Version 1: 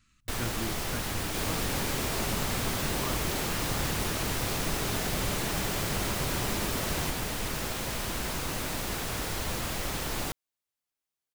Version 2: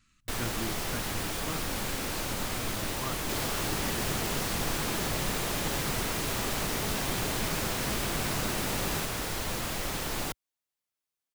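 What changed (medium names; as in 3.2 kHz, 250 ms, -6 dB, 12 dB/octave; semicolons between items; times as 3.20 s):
second sound: entry +1.95 s; master: add peaking EQ 67 Hz -4 dB 1.2 oct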